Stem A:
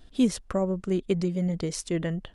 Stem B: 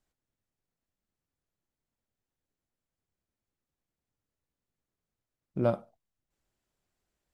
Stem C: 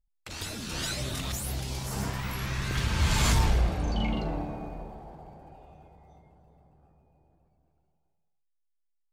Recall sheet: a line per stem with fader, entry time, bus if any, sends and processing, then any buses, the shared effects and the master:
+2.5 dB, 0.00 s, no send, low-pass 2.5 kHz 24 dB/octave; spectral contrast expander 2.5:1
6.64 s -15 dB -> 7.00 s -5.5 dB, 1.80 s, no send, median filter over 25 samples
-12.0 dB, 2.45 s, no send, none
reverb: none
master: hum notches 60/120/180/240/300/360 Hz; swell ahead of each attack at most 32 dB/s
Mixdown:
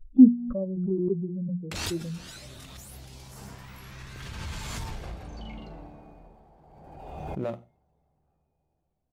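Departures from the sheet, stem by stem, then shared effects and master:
stem A +2.5 dB -> +8.5 dB; stem C: entry 2.45 s -> 1.45 s

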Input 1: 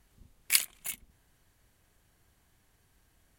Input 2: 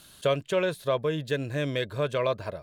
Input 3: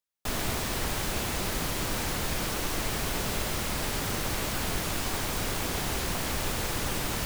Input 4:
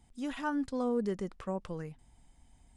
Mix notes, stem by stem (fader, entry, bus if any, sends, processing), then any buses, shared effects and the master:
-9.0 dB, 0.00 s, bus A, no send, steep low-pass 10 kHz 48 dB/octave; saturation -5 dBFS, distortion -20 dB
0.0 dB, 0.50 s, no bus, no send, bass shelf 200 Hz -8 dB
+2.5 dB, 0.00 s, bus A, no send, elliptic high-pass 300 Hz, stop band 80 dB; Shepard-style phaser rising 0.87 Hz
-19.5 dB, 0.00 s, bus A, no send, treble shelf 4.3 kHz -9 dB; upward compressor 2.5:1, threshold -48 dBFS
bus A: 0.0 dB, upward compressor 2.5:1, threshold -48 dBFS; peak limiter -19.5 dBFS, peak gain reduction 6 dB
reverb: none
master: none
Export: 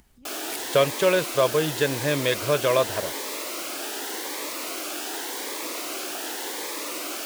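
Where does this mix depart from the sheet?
stem 1: missing steep low-pass 10 kHz 48 dB/octave; stem 2 0.0 dB -> +6.5 dB

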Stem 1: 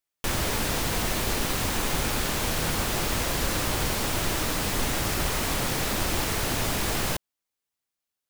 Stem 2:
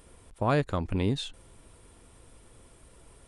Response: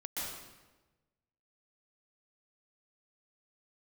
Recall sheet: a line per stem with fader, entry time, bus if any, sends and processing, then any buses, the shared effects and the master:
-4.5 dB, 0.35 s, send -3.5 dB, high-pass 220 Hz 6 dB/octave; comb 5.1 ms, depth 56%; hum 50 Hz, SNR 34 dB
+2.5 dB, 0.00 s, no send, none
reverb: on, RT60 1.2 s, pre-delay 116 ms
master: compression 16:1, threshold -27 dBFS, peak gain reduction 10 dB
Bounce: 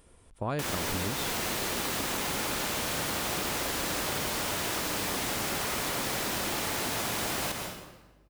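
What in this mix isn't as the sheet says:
stem 1: missing comb 5.1 ms, depth 56%; stem 2 +2.5 dB -> -4.0 dB

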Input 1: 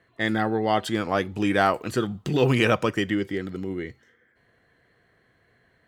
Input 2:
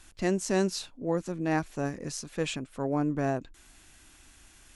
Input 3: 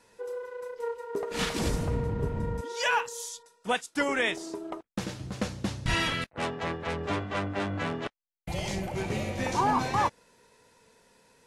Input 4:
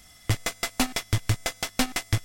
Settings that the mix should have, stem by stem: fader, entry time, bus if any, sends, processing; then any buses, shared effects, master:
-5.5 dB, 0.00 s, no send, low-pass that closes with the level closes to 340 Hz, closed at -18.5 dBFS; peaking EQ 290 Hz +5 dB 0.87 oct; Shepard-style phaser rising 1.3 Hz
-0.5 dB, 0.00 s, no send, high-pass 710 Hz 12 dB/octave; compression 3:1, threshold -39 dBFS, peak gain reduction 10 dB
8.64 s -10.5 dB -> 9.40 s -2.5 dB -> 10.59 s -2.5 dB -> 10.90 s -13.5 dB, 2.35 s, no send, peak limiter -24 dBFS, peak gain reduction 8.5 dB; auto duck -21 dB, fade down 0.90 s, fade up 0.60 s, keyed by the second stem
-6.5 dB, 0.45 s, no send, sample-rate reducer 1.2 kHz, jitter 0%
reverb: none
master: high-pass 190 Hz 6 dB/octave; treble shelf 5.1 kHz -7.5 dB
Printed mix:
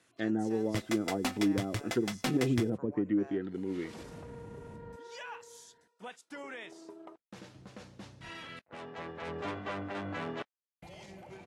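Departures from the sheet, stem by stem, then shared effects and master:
stem 2 -0.5 dB -> -9.5 dB; stem 4: missing sample-rate reducer 1.2 kHz, jitter 0%

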